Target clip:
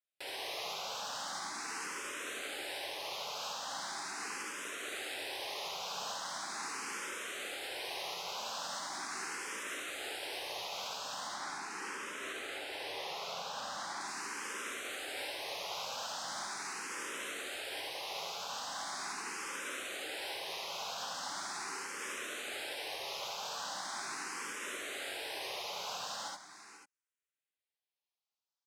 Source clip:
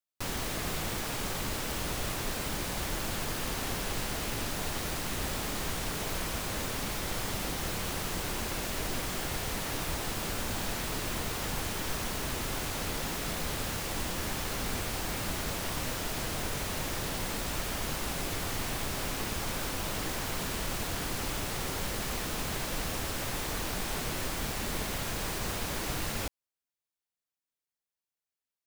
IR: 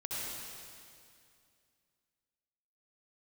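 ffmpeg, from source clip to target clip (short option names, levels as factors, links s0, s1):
-filter_complex "[0:a]asettb=1/sr,asplit=3[s0][s1][s2];[s0]atrim=end=11.274[s3];[s1]atrim=start=11.27:end=14.01,asetpts=PTS-STARTPTS,afade=t=in:d=0.004:c=qsin,afade=t=out:st=2.736:d=0.004:c=qsin,highshelf=f=4300:g=-7.5[s4];[s2]atrim=start=14.006[s5];[s3][s4]acrossfade=d=0.004:c1=hsin:c2=qsin[s6];[s6][s5]acrossfade=d=0.004:c1=qsin:c2=hsin,alimiter=level_in=1.19:limit=0.0631:level=0:latency=1:release=247,volume=0.841,highpass=560,lowpass=7600,aecho=1:1:489:0.237[s7];[1:a]atrim=start_sample=2205,atrim=end_sample=3969[s8];[s7][s8]afir=irnorm=-1:irlink=0,asplit=2[s9][s10];[s10]afreqshift=0.4[s11];[s9][s11]amix=inputs=2:normalize=1,volume=1.68"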